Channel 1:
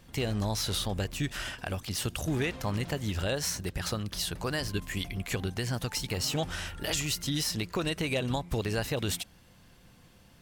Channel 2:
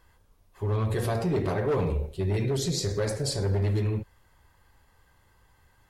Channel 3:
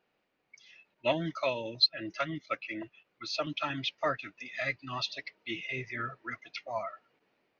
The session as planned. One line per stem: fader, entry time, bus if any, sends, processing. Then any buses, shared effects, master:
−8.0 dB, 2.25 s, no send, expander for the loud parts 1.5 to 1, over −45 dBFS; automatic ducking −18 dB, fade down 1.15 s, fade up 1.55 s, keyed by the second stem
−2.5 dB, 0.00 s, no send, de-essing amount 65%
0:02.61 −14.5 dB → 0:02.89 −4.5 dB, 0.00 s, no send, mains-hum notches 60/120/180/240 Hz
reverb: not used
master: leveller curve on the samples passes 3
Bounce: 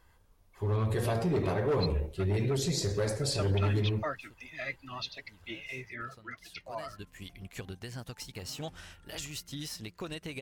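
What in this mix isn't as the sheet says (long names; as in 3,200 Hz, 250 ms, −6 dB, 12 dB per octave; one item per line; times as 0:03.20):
stem 2: missing de-essing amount 65%
stem 3: missing mains-hum notches 60/120/180/240 Hz
master: missing leveller curve on the samples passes 3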